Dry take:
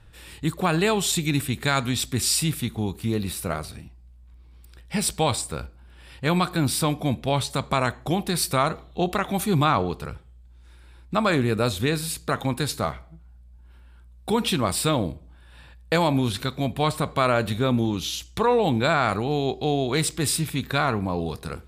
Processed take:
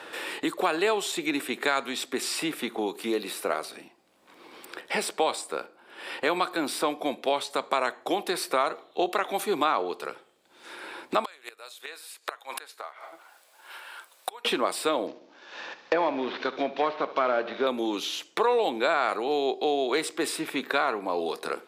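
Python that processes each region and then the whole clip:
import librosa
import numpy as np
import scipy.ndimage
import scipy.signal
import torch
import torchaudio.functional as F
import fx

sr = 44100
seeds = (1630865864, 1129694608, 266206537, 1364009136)

y = fx.chain(x, sr, fx.highpass(hz=620.0, slope=12),
    fx.tilt_eq(slope=2.5),
    fx.gate_flip(shuts_db=-18.0, range_db=-26), at=(11.24, 14.45))
y = fx.chain(y, sr, fx.cvsd(bps=32000),
    fx.env_lowpass_down(base_hz=2000.0, full_db=-21.0),
    fx.echo_feedback(ms=71, feedback_pct=56, wet_db=-17.0), at=(15.07, 17.67))
y = scipy.signal.sosfilt(scipy.signal.butter(4, 340.0, 'highpass', fs=sr, output='sos'), y)
y = fx.high_shelf(y, sr, hz=4000.0, db=-8.0)
y = fx.band_squash(y, sr, depth_pct=70)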